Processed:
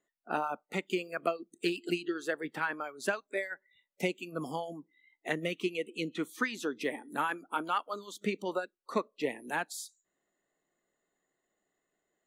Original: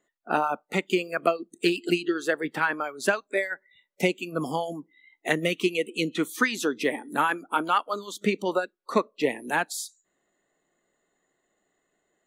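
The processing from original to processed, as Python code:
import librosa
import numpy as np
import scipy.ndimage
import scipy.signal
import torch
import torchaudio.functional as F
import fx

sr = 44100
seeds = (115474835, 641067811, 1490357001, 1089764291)

y = fx.high_shelf(x, sr, hz=5200.0, db=-5.5, at=(4.6, 6.81))
y = y * 10.0 ** (-8.0 / 20.0)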